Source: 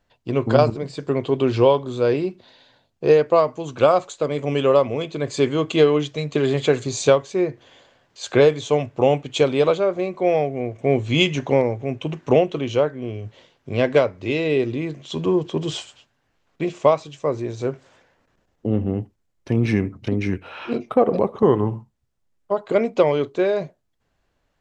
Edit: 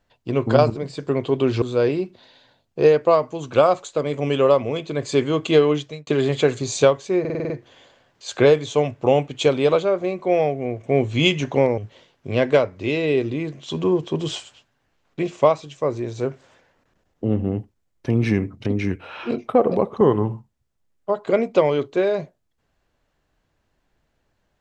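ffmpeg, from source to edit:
-filter_complex "[0:a]asplit=10[a][b][c][d][e][f][g][h][i][j];[a]atrim=end=1.622[k];[b]atrim=start=1.868:end=6.32,asetpts=PTS-STARTPTS,afade=t=out:st=4.142:d=0.31[l];[c]atrim=start=6.32:end=7.502,asetpts=PTS-STARTPTS,afade=t=in:d=0.004:c=hsin[m];[d]atrim=start=7.448:end=7.502[n];[e]atrim=start=7.448:end=7.502[o];[f]atrim=start=7.448:end=7.502[p];[g]atrim=start=7.448:end=7.502[q];[h]atrim=start=7.448:end=7.502[r];[i]atrim=start=7.448:end=11.732[s];[j]atrim=start=13.198[t];[l][m]concat=n=2:v=0:a=1[u];[k][u]acrossfade=d=0.004:c1=hsin:c2=hsin[v];[v][n]acrossfade=d=0.004:c1=hsin:c2=hsin[w];[w][o]acrossfade=d=0.004:c1=hsin:c2=hsin[x];[x][p]acrossfade=d=0.004:c1=hsin:c2=hsin[y];[y][q]acrossfade=d=0.004:c1=hsin:c2=hsin[z];[z][r]acrossfade=d=0.004:c1=hsin:c2=hsin[aa];[aa][s]acrossfade=d=0.004:c1=hsin:c2=hsin[ab];[ab][t]acrossfade=d=0.004:c1=hsin:c2=hsin"

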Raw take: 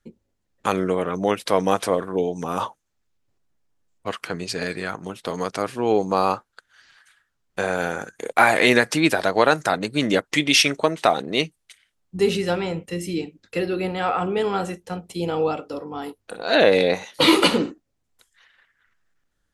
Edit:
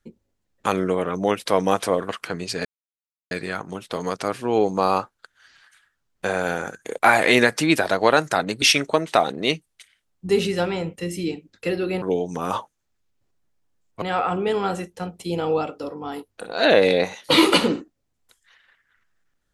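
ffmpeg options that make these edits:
-filter_complex "[0:a]asplit=6[a][b][c][d][e][f];[a]atrim=end=2.092[g];[b]atrim=start=4.088:end=4.65,asetpts=PTS-STARTPTS,afade=t=out:st=0.558:d=0.004:c=hsin,apad=pad_dur=0.66[h];[c]atrim=start=4.65:end=9.962,asetpts=PTS-STARTPTS,afade=t=in:d=0.004:c=hsin[i];[d]atrim=start=10.518:end=13.922[j];[e]atrim=start=2.088:end=4.092[k];[f]atrim=start=13.918[l];[h][i]concat=n=2:v=0:a=1[m];[g][m]acrossfade=d=0.004:c1=hsin:c2=hsin[n];[n][j]acrossfade=d=0.004:c1=hsin:c2=hsin[o];[o][k]acrossfade=d=0.004:c1=hsin:c2=hsin[p];[p][l]acrossfade=d=0.004:c1=hsin:c2=hsin"

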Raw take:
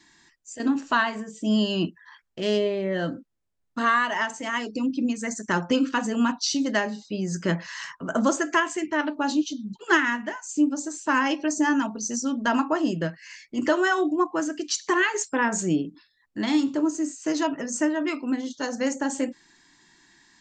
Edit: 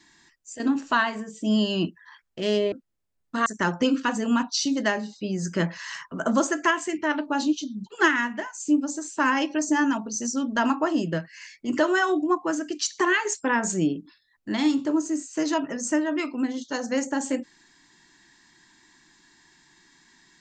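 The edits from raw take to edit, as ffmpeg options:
-filter_complex "[0:a]asplit=3[a][b][c];[a]atrim=end=2.722[d];[b]atrim=start=3.148:end=3.892[e];[c]atrim=start=5.348[f];[d][e]acrossfade=d=0.004:c1=hsin:c2=hsin[g];[g][f]acrossfade=d=0.004:c1=hsin:c2=hsin"

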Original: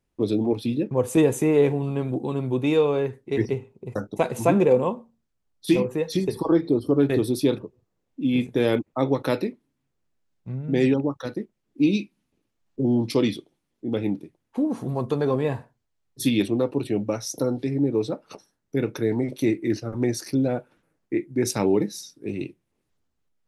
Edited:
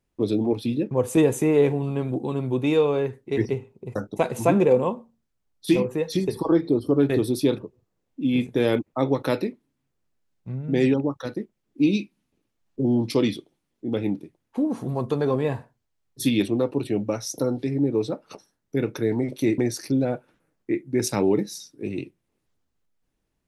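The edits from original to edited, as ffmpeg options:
-filter_complex "[0:a]asplit=2[a][b];[a]atrim=end=19.582[c];[b]atrim=start=20.008[d];[c][d]acrossfade=d=0.004:c1=hsin:c2=hsin"

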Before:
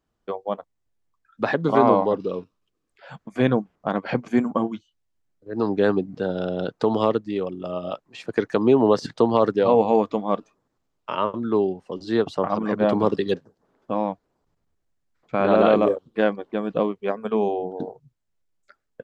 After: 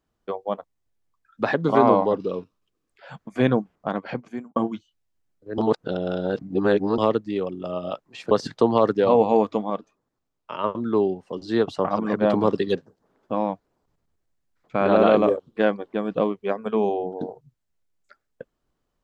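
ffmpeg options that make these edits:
-filter_complex "[0:a]asplit=7[a][b][c][d][e][f][g];[a]atrim=end=4.56,asetpts=PTS-STARTPTS,afade=t=out:st=3.73:d=0.83[h];[b]atrim=start=4.56:end=5.582,asetpts=PTS-STARTPTS,afade=t=in:d=0.004:c=hsin[i];[c]atrim=start=5.578:end=6.982,asetpts=PTS-STARTPTS,areverse[j];[d]atrim=start=6.978:end=8.312[k];[e]atrim=start=8.898:end=10.292[l];[f]atrim=start=10.288:end=11.232,asetpts=PTS-STARTPTS,volume=-5dB[m];[g]atrim=start=11.228[n];[h][i]concat=n=2:v=0:a=1[o];[o][j]acrossfade=d=0.004:c1=hsin:c2=hsin[p];[p][k]acrossfade=d=0.004:c1=hsin:c2=hsin[q];[q][l]acrossfade=d=0.004:c1=hsin:c2=hsin[r];[r][m]acrossfade=d=0.004:c1=hsin:c2=hsin[s];[s][n]acrossfade=d=0.004:c1=hsin:c2=hsin"

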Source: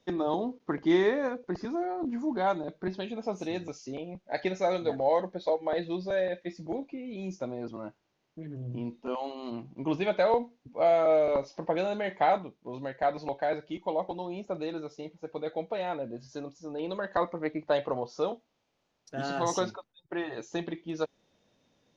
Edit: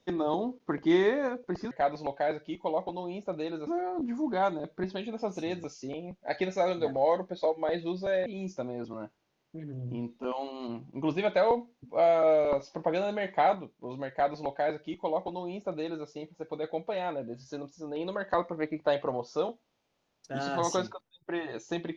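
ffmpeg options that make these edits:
-filter_complex "[0:a]asplit=4[a][b][c][d];[a]atrim=end=1.712[e];[b]atrim=start=12.928:end=14.892[f];[c]atrim=start=1.708:end=6.302[g];[d]atrim=start=7.088[h];[e][f]acrossfade=d=0.004:c1=hsin:c2=hsin[i];[i][g]acrossfade=d=0.004:c1=hsin:c2=hsin[j];[j][h]acrossfade=d=0.004:c1=hsin:c2=hsin"

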